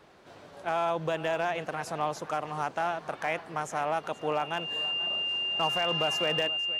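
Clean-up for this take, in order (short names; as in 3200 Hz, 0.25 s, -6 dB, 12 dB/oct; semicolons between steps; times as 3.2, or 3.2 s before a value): clip repair -19 dBFS; notch 2800 Hz, Q 30; inverse comb 0.479 s -16.5 dB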